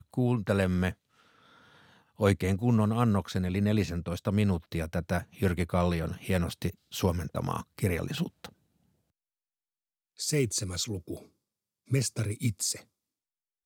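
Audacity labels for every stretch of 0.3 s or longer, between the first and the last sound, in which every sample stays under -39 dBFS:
0.920000	2.200000	silence
8.460000	10.190000	silence
11.180000	11.910000	silence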